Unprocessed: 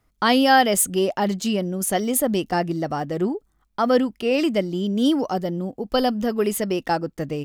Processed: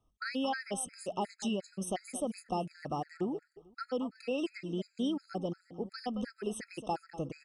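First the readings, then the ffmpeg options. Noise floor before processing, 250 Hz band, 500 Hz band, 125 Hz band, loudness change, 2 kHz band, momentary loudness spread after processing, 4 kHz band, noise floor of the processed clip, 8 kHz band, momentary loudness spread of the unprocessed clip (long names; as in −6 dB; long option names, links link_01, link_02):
−66 dBFS, −14.5 dB, −15.5 dB, −14.0 dB, −15.5 dB, −17.0 dB, 5 LU, −16.5 dB, −74 dBFS, −16.5 dB, 9 LU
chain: -af "acompressor=threshold=-21dB:ratio=6,aresample=22050,aresample=44100,aecho=1:1:223|446|669:0.2|0.0459|0.0106,afftfilt=real='re*gt(sin(2*PI*2.8*pts/sr)*(1-2*mod(floor(b*sr/1024/1300),2)),0)':imag='im*gt(sin(2*PI*2.8*pts/sr)*(1-2*mod(floor(b*sr/1024/1300),2)),0)':win_size=1024:overlap=0.75,volume=-8dB"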